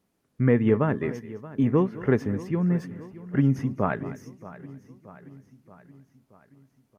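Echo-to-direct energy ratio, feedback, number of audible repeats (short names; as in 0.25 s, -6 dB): -13.5 dB, no steady repeat, 5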